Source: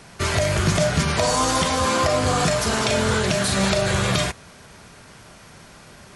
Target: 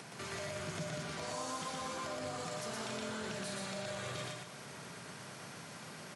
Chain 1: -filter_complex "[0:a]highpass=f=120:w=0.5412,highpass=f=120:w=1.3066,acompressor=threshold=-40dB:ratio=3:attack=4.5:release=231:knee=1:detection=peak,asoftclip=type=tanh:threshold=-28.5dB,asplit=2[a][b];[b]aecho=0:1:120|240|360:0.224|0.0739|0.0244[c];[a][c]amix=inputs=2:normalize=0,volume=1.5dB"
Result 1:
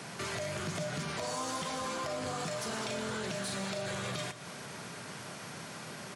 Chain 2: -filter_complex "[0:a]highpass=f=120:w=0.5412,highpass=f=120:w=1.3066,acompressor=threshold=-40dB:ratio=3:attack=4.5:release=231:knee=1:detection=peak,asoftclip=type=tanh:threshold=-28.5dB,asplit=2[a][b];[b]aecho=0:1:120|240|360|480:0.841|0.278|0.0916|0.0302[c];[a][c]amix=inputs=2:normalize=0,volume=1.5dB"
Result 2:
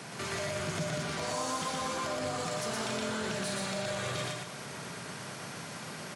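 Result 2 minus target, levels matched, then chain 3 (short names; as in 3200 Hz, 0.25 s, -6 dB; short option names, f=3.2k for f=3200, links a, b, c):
compressor: peak gain reduction -7.5 dB
-filter_complex "[0:a]highpass=f=120:w=0.5412,highpass=f=120:w=1.3066,acompressor=threshold=-51dB:ratio=3:attack=4.5:release=231:knee=1:detection=peak,asoftclip=type=tanh:threshold=-28.5dB,asplit=2[a][b];[b]aecho=0:1:120|240|360|480:0.841|0.278|0.0916|0.0302[c];[a][c]amix=inputs=2:normalize=0,volume=1.5dB"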